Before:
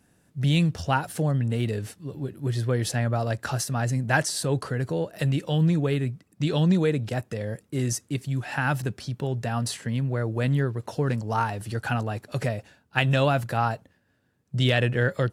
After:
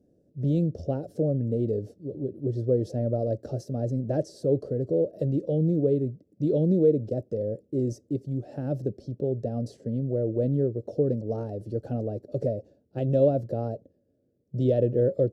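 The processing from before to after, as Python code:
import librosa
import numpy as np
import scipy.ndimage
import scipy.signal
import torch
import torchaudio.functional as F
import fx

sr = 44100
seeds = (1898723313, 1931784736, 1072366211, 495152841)

y = fx.curve_eq(x, sr, hz=(170.0, 330.0, 580.0, 940.0, 1700.0, 2400.0, 5400.0, 9300.0, 14000.0), db=(0, 8, 9, -23, -25, -27, -13, -24, -21))
y = y * librosa.db_to_amplitude(-4.0)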